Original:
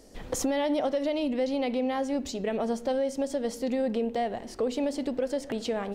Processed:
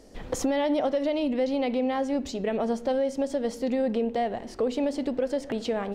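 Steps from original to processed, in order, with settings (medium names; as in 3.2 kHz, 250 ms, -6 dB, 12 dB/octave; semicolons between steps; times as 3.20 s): treble shelf 6.1 kHz -8 dB; trim +2 dB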